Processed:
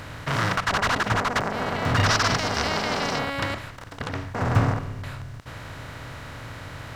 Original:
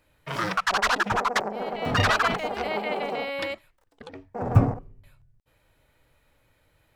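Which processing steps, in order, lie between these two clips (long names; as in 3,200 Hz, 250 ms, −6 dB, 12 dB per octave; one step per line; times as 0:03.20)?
compressor on every frequency bin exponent 0.4
0:02.06–0:03.19: parametric band 5,400 Hz +13.5 dB 0.66 octaves
level −5 dB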